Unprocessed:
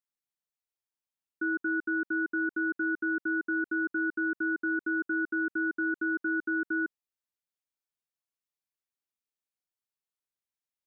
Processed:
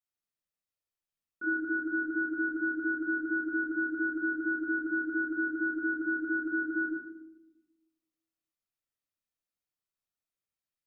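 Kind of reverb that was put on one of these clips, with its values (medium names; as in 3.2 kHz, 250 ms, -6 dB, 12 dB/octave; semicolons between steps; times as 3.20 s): simulated room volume 3100 m³, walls furnished, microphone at 6.4 m; trim -6.5 dB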